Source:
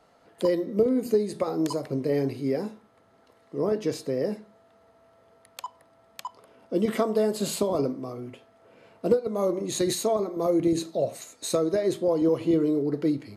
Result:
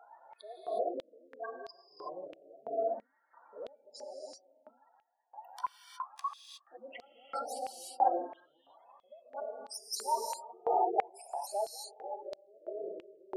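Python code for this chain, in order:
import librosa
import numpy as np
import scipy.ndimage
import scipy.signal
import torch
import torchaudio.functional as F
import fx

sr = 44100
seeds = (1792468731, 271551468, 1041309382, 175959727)

p1 = fx.pitch_ramps(x, sr, semitones=6.5, every_ms=188)
p2 = fx.spec_gate(p1, sr, threshold_db=-10, keep='strong')
p3 = fx.level_steps(p2, sr, step_db=17)
p4 = p2 + (p3 * librosa.db_to_amplitude(1.0))
p5 = fx.hpss(p4, sr, part='percussive', gain_db=-11)
p6 = fx.rev_gated(p5, sr, seeds[0], gate_ms=390, shape='rising', drr_db=-1.0)
p7 = fx.filter_held_highpass(p6, sr, hz=3.0, low_hz=870.0, high_hz=4400.0)
y = p7 * librosa.db_to_amplitude(-2.0)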